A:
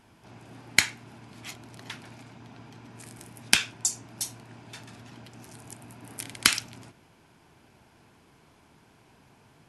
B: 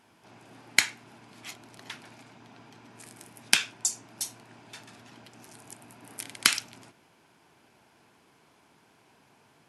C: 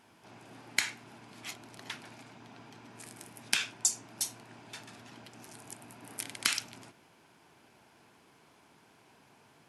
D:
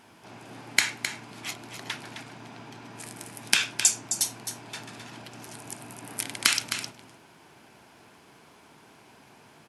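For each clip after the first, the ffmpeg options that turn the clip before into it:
-af "highpass=f=280:p=1,volume=0.891"
-af "alimiter=limit=0.299:level=0:latency=1:release=88"
-af "aecho=1:1:262:0.355,volume=2.24"

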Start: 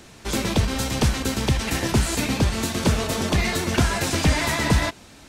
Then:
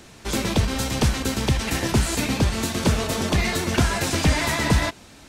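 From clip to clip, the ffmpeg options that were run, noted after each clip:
-af anull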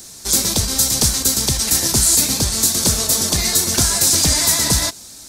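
-af "aexciter=amount=10:drive=0.8:freq=4000,volume=0.841"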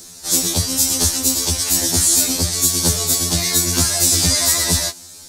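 -af "afftfilt=real='re*2*eq(mod(b,4),0)':imag='im*2*eq(mod(b,4),0)':win_size=2048:overlap=0.75,volume=1.19"

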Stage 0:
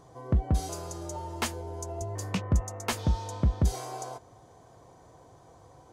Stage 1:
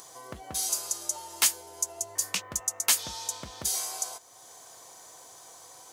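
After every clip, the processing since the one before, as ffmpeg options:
-filter_complex "[0:a]aderivative,asplit=2[s0][s1];[s1]acompressor=mode=upward:threshold=0.00316:ratio=2.5,volume=1.06[s2];[s0][s2]amix=inputs=2:normalize=0,volume=2.51"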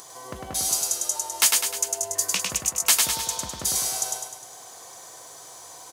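-af "aecho=1:1:102|204|306|408|510|612|714:0.708|0.368|0.191|0.0995|0.0518|0.0269|0.014,volume=1.58"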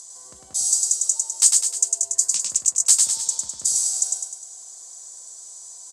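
-af "lowpass=f=7900:t=q:w=6,highshelf=f=3600:t=q:w=1.5:g=8.5,volume=0.188"

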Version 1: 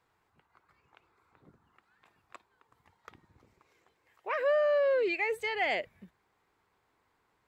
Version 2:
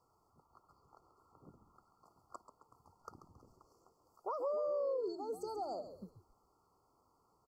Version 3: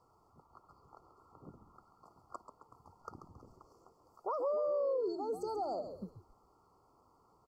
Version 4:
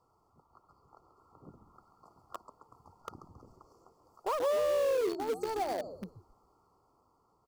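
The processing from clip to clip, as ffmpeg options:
-filter_complex "[0:a]acompressor=threshold=0.0126:ratio=4,afftfilt=real='re*(1-between(b*sr/4096,1400,4300))':imag='im*(1-between(b*sr/4096,1400,4300))':win_size=4096:overlap=0.75,asplit=4[s0][s1][s2][s3];[s1]adelay=136,afreqshift=-83,volume=0.299[s4];[s2]adelay=272,afreqshift=-166,volume=0.0955[s5];[s3]adelay=408,afreqshift=-249,volume=0.0305[s6];[s0][s4][s5][s6]amix=inputs=4:normalize=0,volume=1.12"
-filter_complex "[0:a]asplit=2[s0][s1];[s1]alimiter=level_in=5.62:limit=0.0631:level=0:latency=1,volume=0.178,volume=1[s2];[s0][s2]amix=inputs=2:normalize=0,highshelf=f=5100:g=-8.5"
-filter_complex "[0:a]dynaudnorm=f=380:g=7:m=1.58,asplit=2[s0][s1];[s1]acrusher=bits=4:mix=0:aa=0.000001,volume=0.335[s2];[s0][s2]amix=inputs=2:normalize=0,volume=0.75"

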